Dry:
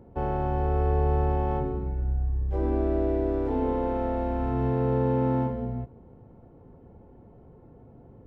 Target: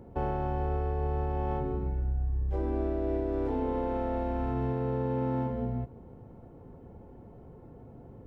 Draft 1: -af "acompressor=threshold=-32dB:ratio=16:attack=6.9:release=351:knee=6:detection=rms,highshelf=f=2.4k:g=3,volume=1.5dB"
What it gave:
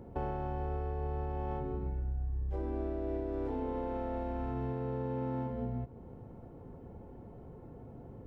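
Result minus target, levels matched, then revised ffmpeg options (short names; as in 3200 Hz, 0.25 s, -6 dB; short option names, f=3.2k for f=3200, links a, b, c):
compressor: peak gain reduction +5.5 dB
-af "acompressor=threshold=-26dB:ratio=16:attack=6.9:release=351:knee=6:detection=rms,highshelf=f=2.4k:g=3,volume=1.5dB"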